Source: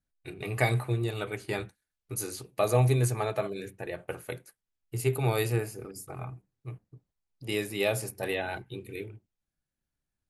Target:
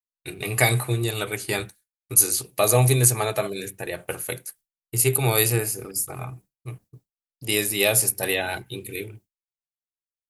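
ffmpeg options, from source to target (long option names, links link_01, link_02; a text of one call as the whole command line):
ffmpeg -i in.wav -af "crystalizer=i=3.5:c=0,agate=range=-33dB:threshold=-49dB:ratio=3:detection=peak,volume=4.5dB" out.wav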